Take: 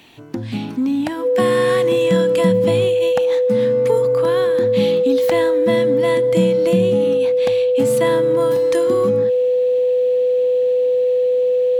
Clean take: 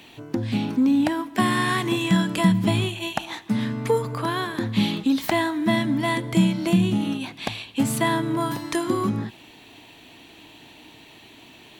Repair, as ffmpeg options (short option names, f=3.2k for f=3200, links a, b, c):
-af "bandreject=f=500:w=30"